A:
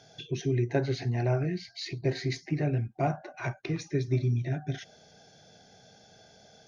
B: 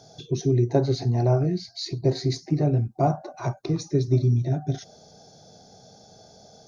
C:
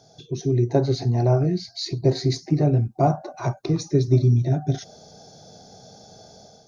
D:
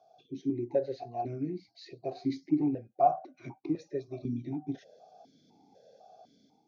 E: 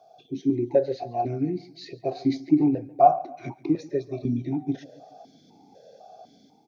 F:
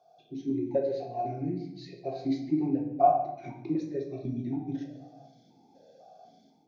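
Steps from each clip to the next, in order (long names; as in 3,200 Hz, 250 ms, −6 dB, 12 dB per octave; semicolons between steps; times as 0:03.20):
flat-topped bell 2,200 Hz −14.5 dB 1.3 octaves; level +6.5 dB
automatic gain control gain up to 7.5 dB; level −3.5 dB
formant filter that steps through the vowels 4 Hz
repeating echo 140 ms, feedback 48%, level −21 dB; level +8 dB
rectangular room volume 220 cubic metres, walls mixed, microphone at 0.88 metres; level −9 dB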